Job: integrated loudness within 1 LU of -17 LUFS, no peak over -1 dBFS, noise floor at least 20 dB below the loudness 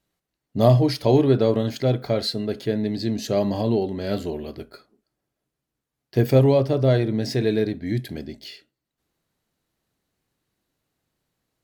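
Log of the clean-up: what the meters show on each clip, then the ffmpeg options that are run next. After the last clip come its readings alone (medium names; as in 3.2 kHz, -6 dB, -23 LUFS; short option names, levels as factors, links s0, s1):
loudness -21.5 LUFS; peak level -3.0 dBFS; loudness target -17.0 LUFS
-> -af "volume=1.68,alimiter=limit=0.891:level=0:latency=1"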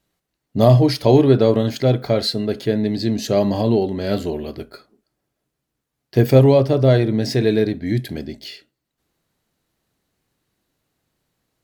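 loudness -17.5 LUFS; peak level -1.0 dBFS; noise floor -79 dBFS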